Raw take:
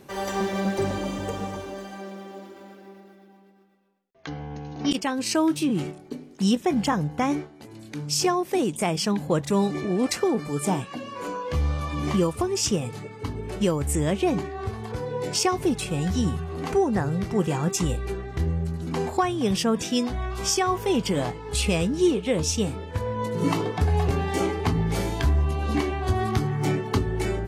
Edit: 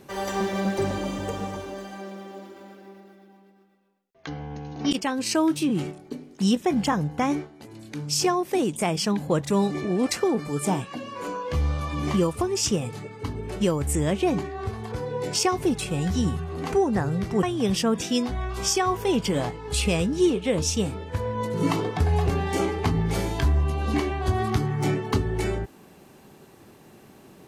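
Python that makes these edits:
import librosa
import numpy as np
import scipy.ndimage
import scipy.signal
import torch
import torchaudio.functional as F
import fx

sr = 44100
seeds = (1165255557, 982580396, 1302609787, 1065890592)

y = fx.edit(x, sr, fx.cut(start_s=17.43, length_s=1.81), tone=tone)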